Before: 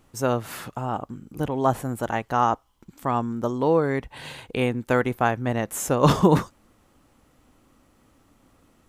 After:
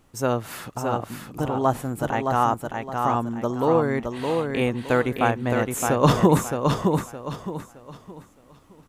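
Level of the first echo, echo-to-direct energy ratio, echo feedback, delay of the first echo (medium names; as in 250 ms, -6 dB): -4.5 dB, -4.0 dB, 31%, 616 ms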